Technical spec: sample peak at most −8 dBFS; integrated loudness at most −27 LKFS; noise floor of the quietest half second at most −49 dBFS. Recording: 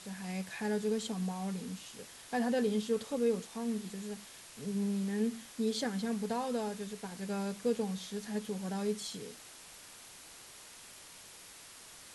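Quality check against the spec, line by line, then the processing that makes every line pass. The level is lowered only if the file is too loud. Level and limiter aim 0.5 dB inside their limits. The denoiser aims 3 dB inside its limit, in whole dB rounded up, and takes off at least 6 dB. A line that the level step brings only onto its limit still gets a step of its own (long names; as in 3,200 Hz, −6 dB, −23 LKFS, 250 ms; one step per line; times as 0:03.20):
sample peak −21.0 dBFS: in spec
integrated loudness −36.0 LKFS: in spec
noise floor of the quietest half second −53 dBFS: in spec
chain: no processing needed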